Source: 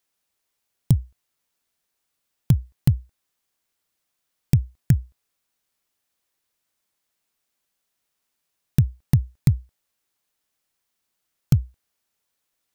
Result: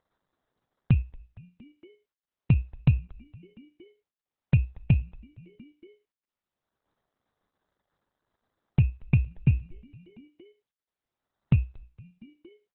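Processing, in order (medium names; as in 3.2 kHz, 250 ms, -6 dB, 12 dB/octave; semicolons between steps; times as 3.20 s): in parallel at -0.5 dB: level held to a coarse grid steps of 18 dB; on the sum: peak limiter -9 dBFS, peak gain reduction 8 dB; dynamic bell 100 Hz, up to -5 dB, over -31 dBFS, Q 2.8; gate -48 dBFS, range -44 dB; low-pass 4 kHz 12 dB/octave; frequency-shifting echo 231 ms, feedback 53%, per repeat -120 Hz, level -22.5 dB; upward compressor, threshold -41 dBFS; 4.54–5.00 s: peaking EQ 820 Hz +10.5 dB 0.57 oct; sample-and-hold 17×; Opus 8 kbps 48 kHz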